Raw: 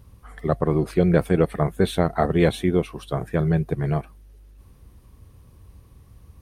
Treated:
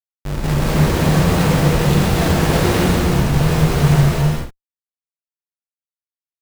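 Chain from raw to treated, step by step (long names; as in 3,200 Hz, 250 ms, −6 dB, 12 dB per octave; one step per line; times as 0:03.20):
low-shelf EQ 150 Hz +10 dB
hum removal 62 Hz, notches 9
comparator with hysteresis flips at −30 dBFS
reverb whose tail is shaped and stops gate 460 ms flat, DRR −7.5 dB
level −2 dB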